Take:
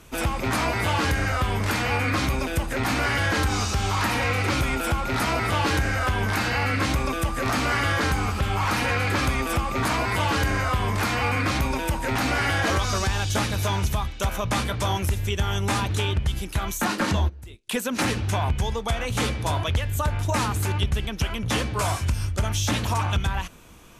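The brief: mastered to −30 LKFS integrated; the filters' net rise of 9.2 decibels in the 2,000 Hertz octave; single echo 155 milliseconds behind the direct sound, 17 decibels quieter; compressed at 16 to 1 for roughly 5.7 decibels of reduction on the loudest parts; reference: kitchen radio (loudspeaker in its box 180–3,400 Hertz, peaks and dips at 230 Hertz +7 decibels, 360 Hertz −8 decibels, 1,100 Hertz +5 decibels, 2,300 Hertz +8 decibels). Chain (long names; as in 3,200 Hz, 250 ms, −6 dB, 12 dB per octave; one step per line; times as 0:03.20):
parametric band 2,000 Hz +6.5 dB
downward compressor 16 to 1, threshold −23 dBFS
loudspeaker in its box 180–3,400 Hz, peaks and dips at 230 Hz +7 dB, 360 Hz −8 dB, 1,100 Hz +5 dB, 2,300 Hz +8 dB
single-tap delay 155 ms −17 dB
level −5 dB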